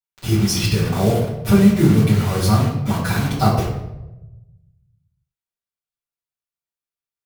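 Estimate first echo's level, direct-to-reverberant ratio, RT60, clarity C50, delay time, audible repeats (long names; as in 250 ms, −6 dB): no echo audible, −10.0 dB, 1.0 s, 3.5 dB, no echo audible, no echo audible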